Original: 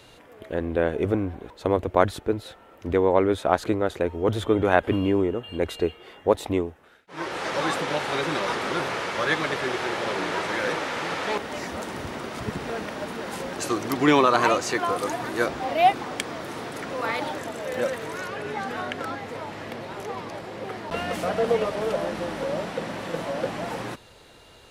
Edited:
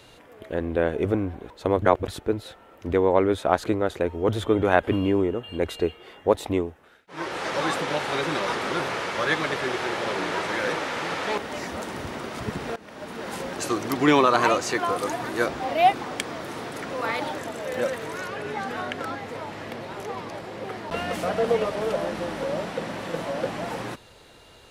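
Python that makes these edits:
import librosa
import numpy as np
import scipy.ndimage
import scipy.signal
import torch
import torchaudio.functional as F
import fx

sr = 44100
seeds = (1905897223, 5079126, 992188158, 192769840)

y = fx.edit(x, sr, fx.reverse_span(start_s=1.82, length_s=0.26),
    fx.fade_in_from(start_s=12.76, length_s=0.54, floor_db=-20.5), tone=tone)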